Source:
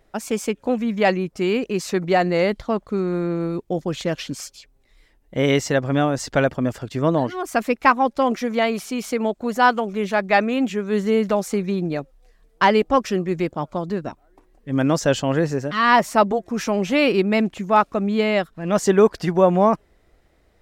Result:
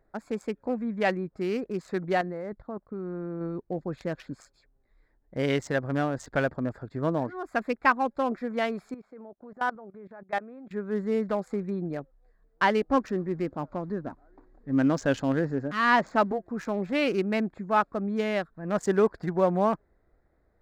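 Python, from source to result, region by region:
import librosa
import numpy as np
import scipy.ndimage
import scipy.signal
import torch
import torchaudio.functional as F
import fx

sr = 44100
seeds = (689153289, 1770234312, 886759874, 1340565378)

y = fx.chain(x, sr, fx.level_steps(step_db=13),
    fx.lowpass(hz=2400.0, slope=6), at=(2.21, 3.41))
y = fx.chain(y, sr, fx.lowpass(hz=1200.0, slope=6),
    fx.low_shelf(hz=190.0, db=-11.0),
    fx.level_steps(step_db=18), at=(8.94, 10.71))
y = fx.chain(y, sr, fx.law_mismatch(coded='mu'),
    fx.peak_eq(hz=270.0, db=6.0, octaves=0.29),
    fx.resample_bad(factor=3, down='none', up='filtered'), at=(12.89, 16.33))
y = fx.wiener(y, sr, points=15)
y = fx.peak_eq(y, sr, hz=1600.0, db=5.0, octaves=0.53)
y = F.gain(torch.from_numpy(y), -8.0).numpy()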